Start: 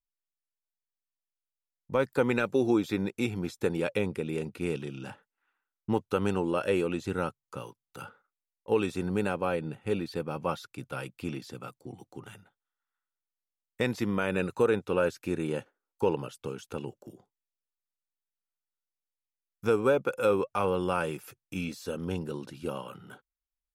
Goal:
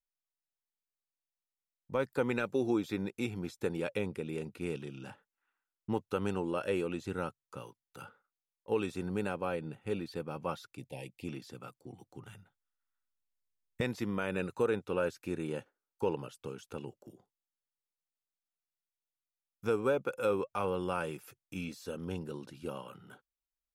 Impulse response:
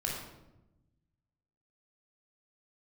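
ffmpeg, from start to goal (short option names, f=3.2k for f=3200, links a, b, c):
-filter_complex "[0:a]asplit=3[a][b][c];[a]afade=t=out:st=10.77:d=0.02[d];[b]asuperstop=centerf=1300:order=8:qfactor=1.4,afade=t=in:st=10.77:d=0.02,afade=t=out:st=11.26:d=0.02[e];[c]afade=t=in:st=11.26:d=0.02[f];[d][e][f]amix=inputs=3:normalize=0,asettb=1/sr,asplit=3[g][h][i];[g]atrim=end=11.904[j];[h]atrim=start=11.9:end=13.81,asetpts=PTS-STARTPTS,afade=t=in:d=0.004:c=qsin,afade=t=out:st=1.906:d=0.004:c=qsin,asubboost=boost=9.5:cutoff=200[k];[i]atrim=start=13.806[l];[j][k]acrossfade=d=0.004:c1=hsin:c2=qsin[m];[m][l]acrossfade=d=0.004:c1=qsin:c2=hsin,volume=-5.5dB"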